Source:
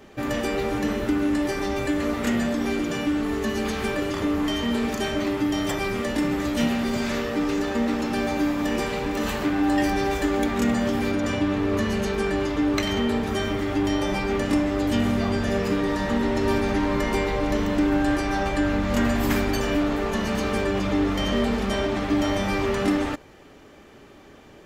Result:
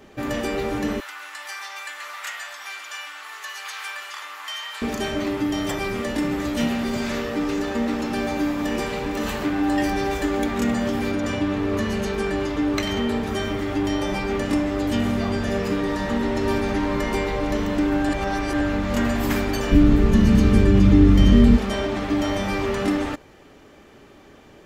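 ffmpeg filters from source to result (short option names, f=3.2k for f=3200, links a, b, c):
-filter_complex "[0:a]asettb=1/sr,asplit=3[a][b][c];[a]atrim=end=1.004[d];[b]atrim=start=1:end=4.82,asetpts=PTS-STARTPTS,afade=t=in:d=0.004:c=qsin,afade=t=out:st=3.816:d=0.004:c=qsin,highpass=f=1k:w=0.5412,highpass=f=1k:w=1.3066[e];[c]atrim=start=4.816[f];[d][e]acrossfade=d=0.004:c1=hsin:c2=qsin[g];[g][f]acrossfade=d=0.004:c1=qsin:c2=hsin,asplit=3[h][i][j];[h]afade=t=out:st=19.71:d=0.02[k];[i]asubboost=boost=6.5:cutoff=250,afade=t=in:st=19.71:d=0.02,afade=t=out:st=21.56:d=0.02[l];[j]afade=t=in:st=21.56:d=0.02[m];[k][l][m]amix=inputs=3:normalize=0,asplit=3[n][o][p];[n]atrim=end=18.092[q];[o]atrim=start=18.088:end=18.612,asetpts=PTS-STARTPTS,areverse[r];[p]atrim=start=18.608[s];[q][r]acrossfade=d=0.004:c1=hsin:c2=hsin[t];[t][s]acrossfade=d=0.004:c1=hsin:c2=hsin"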